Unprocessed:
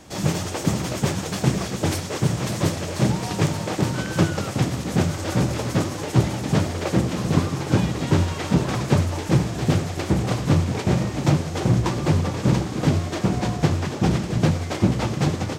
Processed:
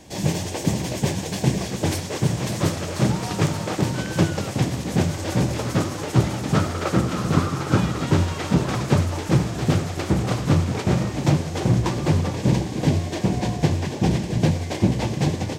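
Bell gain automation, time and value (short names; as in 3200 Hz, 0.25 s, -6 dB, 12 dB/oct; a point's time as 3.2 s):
bell 1300 Hz 0.28 oct
-14.5 dB
from 1.68 s -6.5 dB
from 2.59 s +2.5 dB
from 3.81 s -5.5 dB
from 5.59 s +3 dB
from 6.54 s +11 dB
from 8.06 s +2 dB
from 11.12 s -4 dB
from 12.35 s -13.5 dB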